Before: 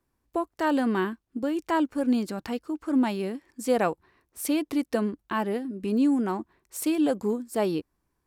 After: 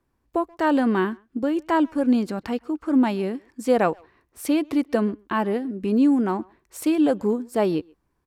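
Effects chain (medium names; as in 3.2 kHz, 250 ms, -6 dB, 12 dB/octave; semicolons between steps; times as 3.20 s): treble shelf 4.4 kHz -8.5 dB; speakerphone echo 130 ms, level -26 dB; trim +4.5 dB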